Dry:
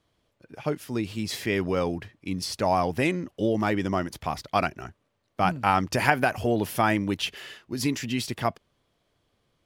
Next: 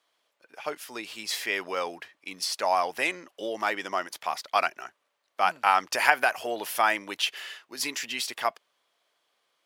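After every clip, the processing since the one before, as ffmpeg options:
-af "highpass=760,volume=2.5dB"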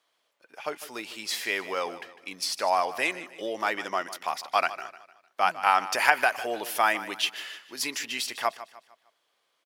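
-af "aecho=1:1:152|304|456|608:0.178|0.0711|0.0285|0.0114"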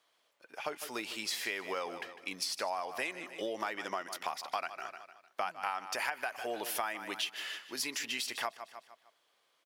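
-af "acompressor=threshold=-33dB:ratio=6"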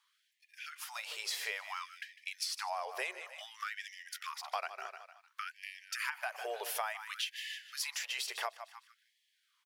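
-af "afftfilt=real='re*gte(b*sr/1024,350*pow(1700/350,0.5+0.5*sin(2*PI*0.57*pts/sr)))':imag='im*gte(b*sr/1024,350*pow(1700/350,0.5+0.5*sin(2*PI*0.57*pts/sr)))':win_size=1024:overlap=0.75,volume=-1.5dB"

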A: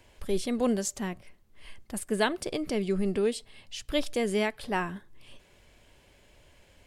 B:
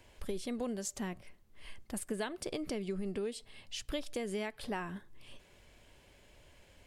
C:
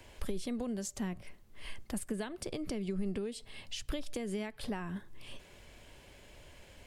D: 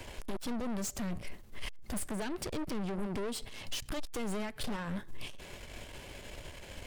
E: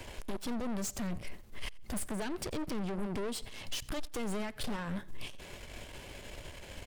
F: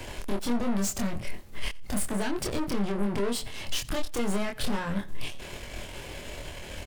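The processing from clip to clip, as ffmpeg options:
-af "acompressor=threshold=-32dB:ratio=6,volume=-2dB"
-filter_complex "[0:a]acrossover=split=210[a][b];[b]acompressor=threshold=-47dB:ratio=2.5[c];[a][c]amix=inputs=2:normalize=0,volume=5.5dB"
-af "aeval=exprs='(tanh(200*val(0)+0.6)-tanh(0.6))/200':c=same,volume=11.5dB"
-af "aecho=1:1:88|176:0.0631|0.0208"
-filter_complex "[0:a]asplit=2[a][b];[b]adelay=25,volume=-3dB[c];[a][c]amix=inputs=2:normalize=0,volume=5.5dB"

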